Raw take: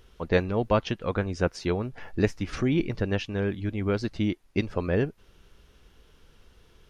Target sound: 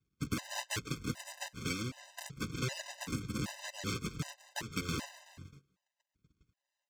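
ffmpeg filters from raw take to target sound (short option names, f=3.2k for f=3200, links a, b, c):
-filter_complex "[0:a]aresample=16000,acrusher=samples=31:mix=1:aa=0.000001:lfo=1:lforange=49.6:lforate=1,aresample=44100,aecho=1:1:7:0.84,acrossover=split=150|3000[a][b][c];[a]acompressor=threshold=-26dB:ratio=6[d];[d][b][c]amix=inputs=3:normalize=0,aeval=exprs='abs(val(0))':c=same,asplit=5[e][f][g][h][i];[f]adelay=187,afreqshift=46,volume=-20.5dB[j];[g]adelay=374,afreqshift=92,volume=-26.5dB[k];[h]adelay=561,afreqshift=138,volume=-32.5dB[l];[i]adelay=748,afreqshift=184,volume=-38.6dB[m];[e][j][k][l][m]amix=inputs=5:normalize=0,agate=range=-21dB:threshold=-46dB:ratio=16:detection=peak,highpass=100,equalizer=f=660:w=0.8:g=-13.5,acompressor=threshold=-37dB:ratio=3,afftfilt=real='re*gt(sin(2*PI*1.3*pts/sr)*(1-2*mod(floor(b*sr/1024/520),2)),0)':imag='im*gt(sin(2*PI*1.3*pts/sr)*(1-2*mod(floor(b*sr/1024/520),2)),0)':win_size=1024:overlap=0.75,volume=4.5dB"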